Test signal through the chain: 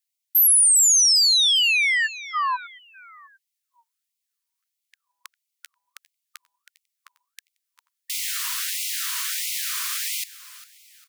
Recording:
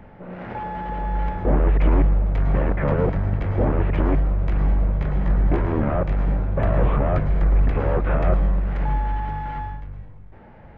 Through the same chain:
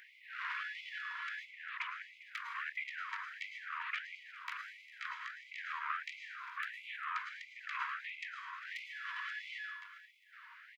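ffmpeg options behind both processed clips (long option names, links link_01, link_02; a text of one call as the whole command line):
ffmpeg -i in.wav -af "alimiter=limit=-18dB:level=0:latency=1:release=106,highshelf=frequency=2500:gain=9,aecho=1:1:402|804|1206:0.141|0.0565|0.0226,afftfilt=real='re*gte(b*sr/1024,910*pow(2000/910,0.5+0.5*sin(2*PI*1.5*pts/sr)))':imag='im*gte(b*sr/1024,910*pow(2000/910,0.5+0.5*sin(2*PI*1.5*pts/sr)))':win_size=1024:overlap=0.75" out.wav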